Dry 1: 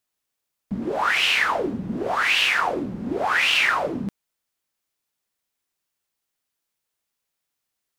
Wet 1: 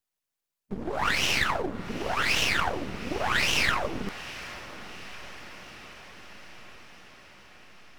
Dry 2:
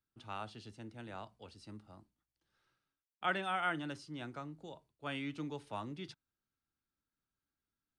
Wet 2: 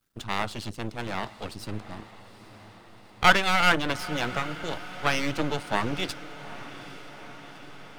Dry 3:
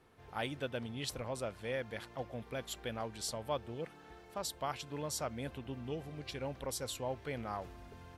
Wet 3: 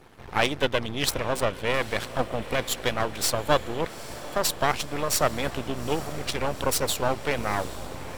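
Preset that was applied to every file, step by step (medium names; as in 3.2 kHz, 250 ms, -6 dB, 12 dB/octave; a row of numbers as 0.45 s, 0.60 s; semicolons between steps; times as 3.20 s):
half-wave rectifier; harmonic-percussive split percussive +7 dB; echo that smears into a reverb 839 ms, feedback 67%, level -15.5 dB; normalise loudness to -27 LUFS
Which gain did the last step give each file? -6.0 dB, +15.0 dB, +12.5 dB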